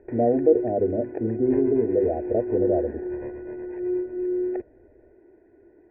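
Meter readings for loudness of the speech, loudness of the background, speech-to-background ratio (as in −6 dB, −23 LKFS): −24.0 LKFS, −29.5 LKFS, 5.5 dB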